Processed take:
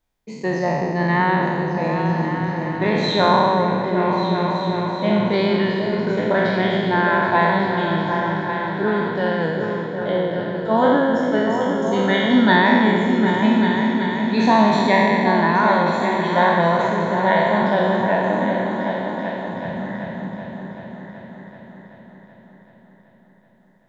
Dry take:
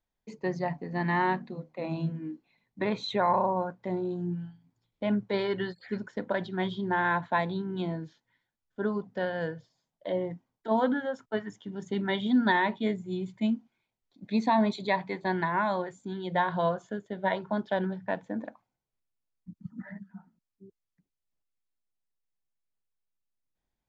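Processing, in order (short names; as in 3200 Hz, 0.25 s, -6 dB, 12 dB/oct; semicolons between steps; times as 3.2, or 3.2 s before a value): spectral trails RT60 1.94 s; repeats that get brighter 0.381 s, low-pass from 400 Hz, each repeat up 2 oct, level -3 dB; gain +6.5 dB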